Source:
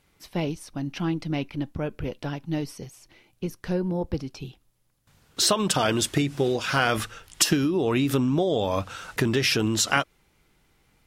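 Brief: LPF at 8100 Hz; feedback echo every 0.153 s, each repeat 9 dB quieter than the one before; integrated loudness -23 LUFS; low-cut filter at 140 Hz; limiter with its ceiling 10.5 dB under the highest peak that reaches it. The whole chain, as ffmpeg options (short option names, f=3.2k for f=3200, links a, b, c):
-af "highpass=140,lowpass=8.1k,alimiter=limit=-15dB:level=0:latency=1,aecho=1:1:153|306|459|612:0.355|0.124|0.0435|0.0152,volume=4.5dB"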